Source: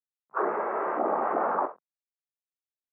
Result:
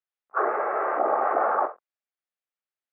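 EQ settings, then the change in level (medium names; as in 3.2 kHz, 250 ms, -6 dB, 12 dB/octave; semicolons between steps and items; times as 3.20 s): band-pass 520–2500 Hz; band-stop 970 Hz, Q 5.8; +6.0 dB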